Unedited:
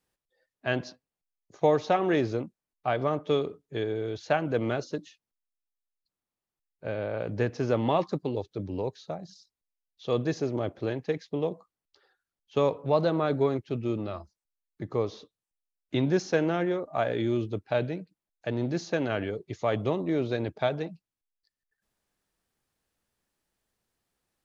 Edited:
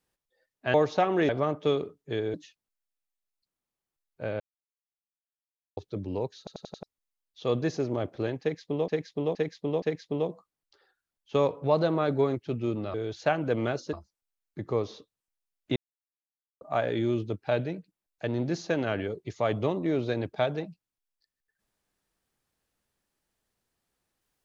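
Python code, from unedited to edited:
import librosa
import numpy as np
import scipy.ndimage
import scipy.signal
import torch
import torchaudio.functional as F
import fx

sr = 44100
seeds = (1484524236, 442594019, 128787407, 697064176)

y = fx.edit(x, sr, fx.cut(start_s=0.74, length_s=0.92),
    fx.cut(start_s=2.21, length_s=0.72),
    fx.move(start_s=3.98, length_s=0.99, to_s=14.16),
    fx.silence(start_s=7.03, length_s=1.37),
    fx.stutter_over(start_s=9.01, slice_s=0.09, count=5),
    fx.repeat(start_s=11.04, length_s=0.47, count=4),
    fx.silence(start_s=15.99, length_s=0.85), tone=tone)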